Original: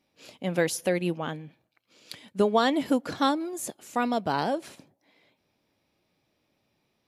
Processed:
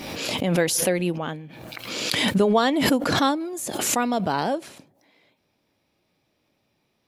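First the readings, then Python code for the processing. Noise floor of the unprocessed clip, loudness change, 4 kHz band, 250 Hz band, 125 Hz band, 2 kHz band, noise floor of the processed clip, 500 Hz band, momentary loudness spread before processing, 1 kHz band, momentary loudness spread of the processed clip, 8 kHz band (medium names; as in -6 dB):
-75 dBFS, +4.5 dB, +10.0 dB, +4.5 dB, +7.0 dB, +6.5 dB, -72 dBFS, +3.5 dB, 12 LU, +3.5 dB, 12 LU, +11.5 dB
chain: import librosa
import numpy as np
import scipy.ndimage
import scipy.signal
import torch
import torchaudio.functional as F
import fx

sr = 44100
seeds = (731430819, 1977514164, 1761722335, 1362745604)

y = fx.pre_swell(x, sr, db_per_s=31.0)
y = F.gain(torch.from_numpy(y), 2.5).numpy()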